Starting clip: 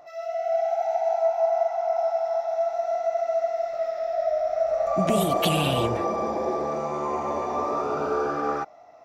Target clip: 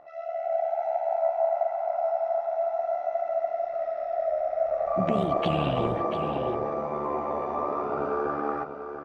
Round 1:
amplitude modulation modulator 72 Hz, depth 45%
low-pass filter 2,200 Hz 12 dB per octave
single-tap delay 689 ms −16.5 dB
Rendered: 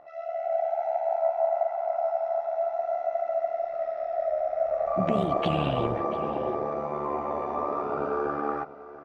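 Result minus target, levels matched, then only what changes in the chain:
echo-to-direct −7.5 dB
change: single-tap delay 689 ms −9 dB

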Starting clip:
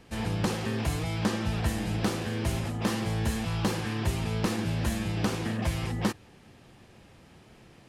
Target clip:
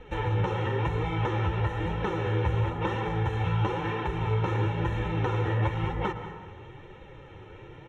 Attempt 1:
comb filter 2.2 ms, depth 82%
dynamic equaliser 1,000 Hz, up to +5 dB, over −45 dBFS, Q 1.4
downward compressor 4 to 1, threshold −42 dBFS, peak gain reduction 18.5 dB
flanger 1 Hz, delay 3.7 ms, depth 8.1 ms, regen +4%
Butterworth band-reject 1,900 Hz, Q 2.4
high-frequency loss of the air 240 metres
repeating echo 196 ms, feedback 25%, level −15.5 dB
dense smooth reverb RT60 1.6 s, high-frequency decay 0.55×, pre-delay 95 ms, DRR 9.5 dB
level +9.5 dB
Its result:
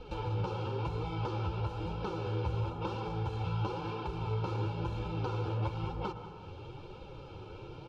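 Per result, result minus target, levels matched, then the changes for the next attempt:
downward compressor: peak gain reduction +7 dB; 2,000 Hz band −5.5 dB
change: downward compressor 4 to 1, threshold −32.5 dBFS, peak gain reduction 11.5 dB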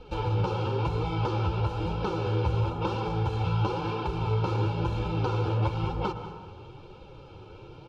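2,000 Hz band −6.0 dB
change: Butterworth band-reject 4,700 Hz, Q 2.4

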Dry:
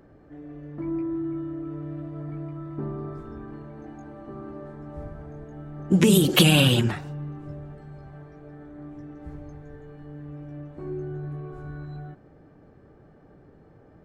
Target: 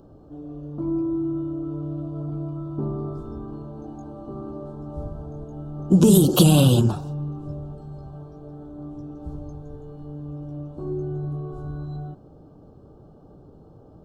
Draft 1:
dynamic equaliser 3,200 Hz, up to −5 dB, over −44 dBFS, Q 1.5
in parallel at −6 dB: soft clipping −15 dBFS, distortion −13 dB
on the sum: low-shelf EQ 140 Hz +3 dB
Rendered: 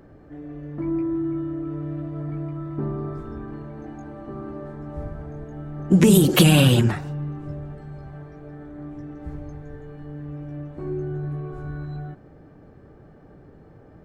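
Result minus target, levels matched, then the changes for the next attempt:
2,000 Hz band +10.5 dB
add after dynamic equaliser: Butterworth band-reject 2,000 Hz, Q 0.98

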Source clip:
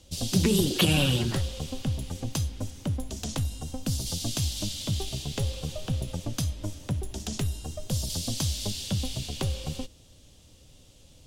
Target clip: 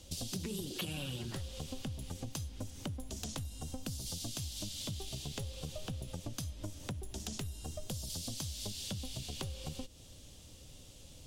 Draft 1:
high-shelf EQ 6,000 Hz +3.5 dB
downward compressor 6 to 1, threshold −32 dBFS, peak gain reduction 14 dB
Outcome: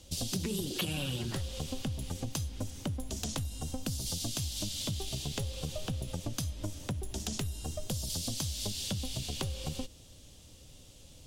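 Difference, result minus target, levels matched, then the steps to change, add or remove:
downward compressor: peak gain reduction −5.5 dB
change: downward compressor 6 to 1, threshold −38.5 dBFS, peak gain reduction 19 dB

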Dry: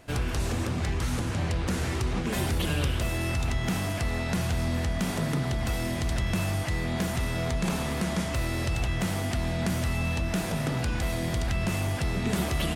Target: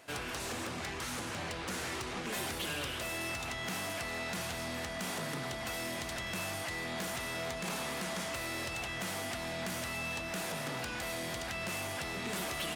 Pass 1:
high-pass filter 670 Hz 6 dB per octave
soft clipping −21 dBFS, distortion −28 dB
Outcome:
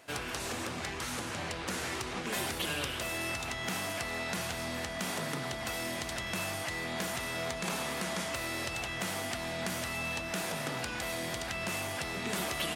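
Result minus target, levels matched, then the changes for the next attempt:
soft clipping: distortion −14 dB
change: soft clipping −32 dBFS, distortion −14 dB

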